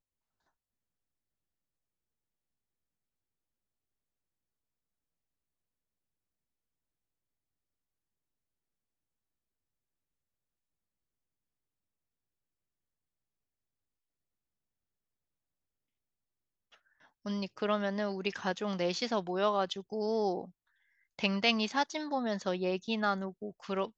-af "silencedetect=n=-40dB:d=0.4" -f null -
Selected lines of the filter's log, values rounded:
silence_start: 0.00
silence_end: 17.26 | silence_duration: 17.26
silence_start: 20.45
silence_end: 21.19 | silence_duration: 0.74